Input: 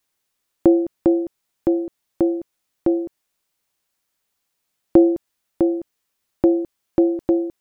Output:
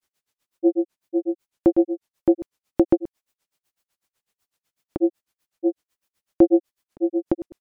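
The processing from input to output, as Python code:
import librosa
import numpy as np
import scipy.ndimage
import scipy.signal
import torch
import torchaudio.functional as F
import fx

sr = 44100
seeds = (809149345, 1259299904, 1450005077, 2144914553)

y = fx.granulator(x, sr, seeds[0], grain_ms=101.0, per_s=8.0, spray_ms=100.0, spread_st=0)
y = y * 10.0 ** (3.0 / 20.0)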